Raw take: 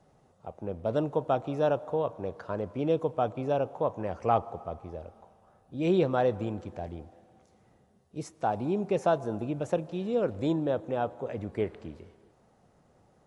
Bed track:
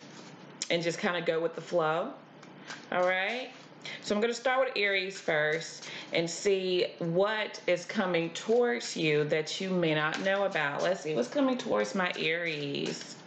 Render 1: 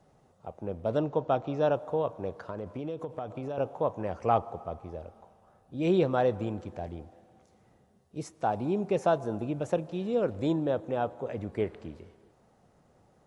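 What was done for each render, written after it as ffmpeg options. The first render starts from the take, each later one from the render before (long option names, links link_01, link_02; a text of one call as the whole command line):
ffmpeg -i in.wav -filter_complex "[0:a]asettb=1/sr,asplit=3[link_01][link_02][link_03];[link_01]atrim=end=0.974[link_04];[link_02]atrim=start=0.97:end=1.74,asetpts=PTS-STARTPTS,afade=type=in:duration=0.004:curve=qsin,afade=type=out:start_time=0.766:duration=0.004:curve=qsin,lowpass=frequency=6400:width=0.5412,lowpass=frequency=6400:width=1.3066[link_05];[link_03]atrim=start=1.736[link_06];[link_04][link_05]acrossfade=duration=0.004:curve1=hsin:curve2=qsin[link_07];[link_07][link_06]acrossfade=duration=0.004:curve1=qsin:curve2=hsin,asettb=1/sr,asplit=3[link_08][link_09][link_10];[link_08]atrim=end=2.464[link_11];[link_09]atrim=start=2.46:end=3.58,asetpts=PTS-STARTPTS,afade=type=in:duration=0.004:curve=qsin,afade=type=out:start_time=1.116:duration=0.004:curve=qsin,acompressor=threshold=-31dB:ratio=10:attack=3.2:release=140:knee=1:detection=peak[link_12];[link_10]atrim=start=3.576[link_13];[link_11][link_12]acrossfade=duration=0.004:curve1=hsin:curve2=qsin[link_14];[link_14][link_13]acrossfade=duration=0.004:curve1=qsin:curve2=hsin" out.wav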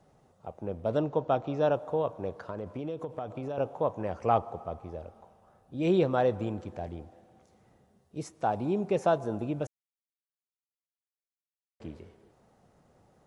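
ffmpeg -i in.wav -filter_complex "[0:a]asplit=3[link_01][link_02][link_03];[link_01]atrim=end=9.67,asetpts=PTS-STARTPTS,afade=type=out:start_time=9.666:duration=0.004:curve=hsin[link_04];[link_02]atrim=start=9.67:end=11.8,asetpts=PTS-STARTPTS,volume=0[link_05];[link_03]atrim=start=11.8,asetpts=PTS-STARTPTS,afade=type=in:duration=0.004:curve=hsin[link_06];[link_04][link_05][link_06]concat=n=3:v=0:a=1" out.wav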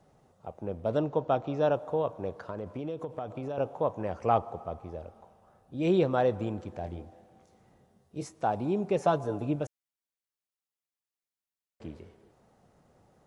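ffmpeg -i in.wav -filter_complex "[0:a]asettb=1/sr,asplit=3[link_01][link_02][link_03];[link_01]atrim=end=6.824[link_04];[link_02]atrim=start=6.82:end=8.39,asetpts=PTS-STARTPTS,afade=type=in:duration=0.004:curve=qsin,afade=type=out:start_time=1.566:duration=0.004:curve=qsin,asplit=2[link_05][link_06];[link_06]adelay=22,volume=-9dB[link_07];[link_05][link_07]amix=inputs=2:normalize=0,atrim=end_sample=69237[link_08];[link_03]atrim=start=8.386[link_09];[link_04][link_08]acrossfade=duration=0.004:curve1=hsin:curve2=qsin[link_10];[link_10][link_09]acrossfade=duration=0.004:curve1=qsin:curve2=hsin,asettb=1/sr,asplit=3[link_11][link_12][link_13];[link_11]atrim=end=8.984[link_14];[link_12]atrim=start=8.98:end=9.56,asetpts=PTS-STARTPTS,afade=type=in:duration=0.004:curve=qsin,afade=type=out:start_time=0.576:duration=0.004:curve=qsin,aecho=1:1:6.9:0.53,atrim=end_sample=25578[link_15];[link_13]atrim=start=9.556[link_16];[link_14][link_15]acrossfade=duration=0.004:curve1=hsin:curve2=qsin[link_17];[link_17][link_16]acrossfade=duration=0.004:curve1=qsin:curve2=hsin" out.wav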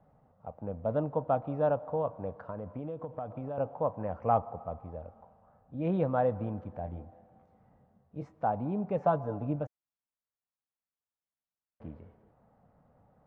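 ffmpeg -i in.wav -af "lowpass=1300,equalizer=frequency=370:width_type=o:width=0.36:gain=-13" out.wav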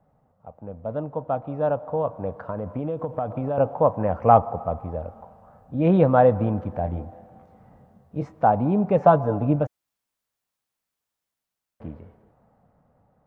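ffmpeg -i in.wav -af "dynaudnorm=framelen=400:gausssize=11:maxgain=13.5dB" out.wav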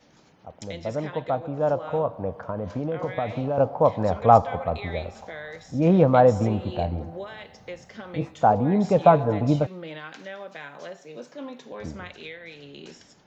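ffmpeg -i in.wav -i bed.wav -filter_complex "[1:a]volume=-10dB[link_01];[0:a][link_01]amix=inputs=2:normalize=0" out.wav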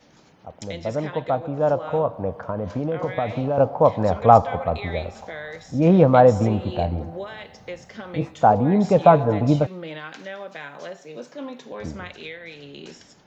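ffmpeg -i in.wav -af "volume=3dB,alimiter=limit=-1dB:level=0:latency=1" out.wav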